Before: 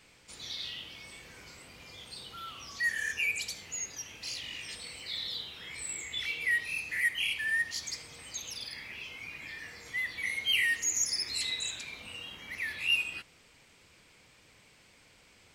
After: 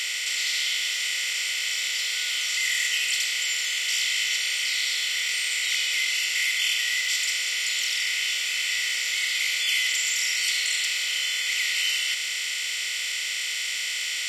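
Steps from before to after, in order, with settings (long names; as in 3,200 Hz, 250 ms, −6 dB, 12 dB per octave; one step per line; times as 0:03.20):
compressor on every frequency bin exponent 0.2
parametric band 4,500 Hz +5 dB 0.36 octaves
wrong playback speed 44.1 kHz file played as 48 kHz
Butterworth high-pass 430 Hz 72 dB per octave
level −4.5 dB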